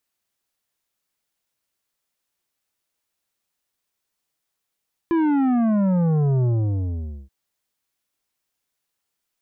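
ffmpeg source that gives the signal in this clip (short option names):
-f lavfi -i "aevalsrc='0.133*clip((2.18-t)/0.85,0,1)*tanh(3.16*sin(2*PI*340*2.18/log(65/340)*(exp(log(65/340)*t/2.18)-1)))/tanh(3.16)':d=2.18:s=44100"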